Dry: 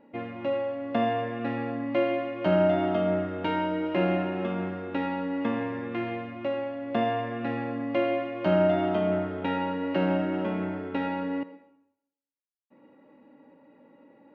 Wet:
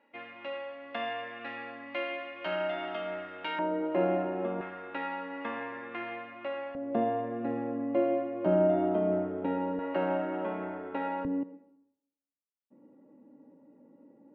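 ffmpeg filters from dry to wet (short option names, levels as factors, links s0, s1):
-af "asetnsamples=n=441:p=0,asendcmd='3.59 bandpass f 590;4.61 bandpass f 1500;6.75 bandpass f 390;9.79 bandpass f 850;11.25 bandpass f 240',bandpass=f=2400:t=q:w=0.8:csg=0"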